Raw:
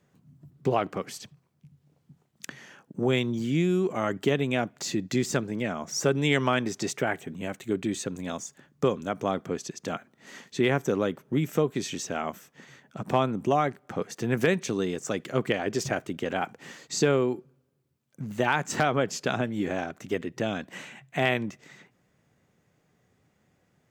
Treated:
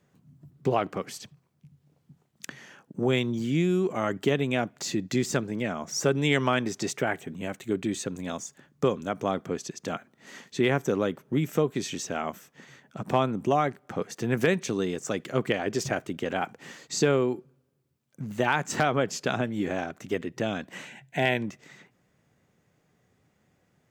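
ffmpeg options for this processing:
ffmpeg -i in.wav -filter_complex "[0:a]asettb=1/sr,asplit=3[link_01][link_02][link_03];[link_01]atrim=end=20.874[link_04];[link_02]atrim=start=20.87:end=21.42,asetpts=PTS-STARTPTS,afade=type=in:duration=0.004:curve=qsin,afade=type=out:start_time=0.546:duration=0.004:curve=qsin,asuperstop=centerf=1200:order=8:qfactor=3.5[link_05];[link_03]atrim=start=21.416[link_06];[link_04][link_05]acrossfade=duration=0.004:curve1=hsin:curve2=qsin[link_07];[link_07][link_06]acrossfade=duration=0.004:curve1=qsin:curve2=hsin" out.wav

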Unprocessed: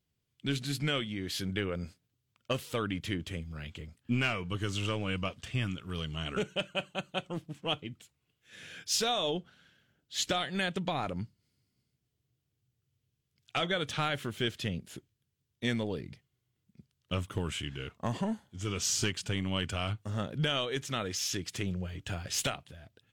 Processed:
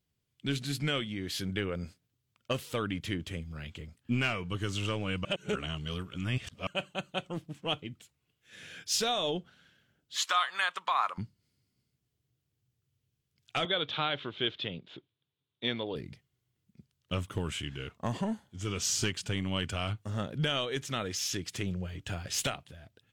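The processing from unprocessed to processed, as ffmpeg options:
ffmpeg -i in.wav -filter_complex "[0:a]asettb=1/sr,asplit=3[link_01][link_02][link_03];[link_01]atrim=end=10.164[link_04];[link_02]atrim=start=10.16:end=11.18,asetpts=PTS-STARTPTS,afade=type=in:duration=0.004:curve=qsin,afade=type=out:start_time=1.016:duration=0.004:curve=qsin,highpass=frequency=1100:width_type=q:width=5.6[link_05];[link_03]atrim=start=11.176[link_06];[link_04][link_05]acrossfade=duration=0.004:curve1=hsin:curve2=qsin[link_07];[link_07][link_06]acrossfade=duration=0.004:curve1=qsin:curve2=hsin,asettb=1/sr,asplit=3[link_08][link_09][link_10];[link_08]atrim=end=13.654[link_11];[link_09]atrim=start=13.65:end=15.96,asetpts=PTS-STARTPTS,afade=type=in:duration=0.004:curve=qsin,afade=type=out:start_time=2.306:duration=0.004:curve=qsin,highpass=170,equalizer=frequency=210:width_type=q:width=4:gain=-8,equalizer=frequency=1000:width_type=q:width=4:gain=3,equalizer=frequency=1800:width_type=q:width=4:gain=-4,equalizer=frequency=3600:width_type=q:width=4:gain=9,lowpass=frequency=3700:width=0.5412,lowpass=frequency=3700:width=1.3066[link_12];[link_10]atrim=start=15.956[link_13];[link_11][link_12]acrossfade=duration=0.004:curve1=hsin:curve2=qsin[link_14];[link_14][link_13]acrossfade=duration=0.004:curve1=qsin:curve2=hsin,asplit=3[link_15][link_16][link_17];[link_15]atrim=end=5.252[link_18];[link_16]atrim=start=5.248:end=6.672,asetpts=PTS-STARTPTS,areverse[link_19];[link_17]atrim=start=6.668[link_20];[link_18][link_19]acrossfade=duration=0.004:curve1=hsin:curve2=hsin[link_21];[link_21][link_20]acrossfade=duration=0.004:curve1=hsin:curve2=hsin" out.wav

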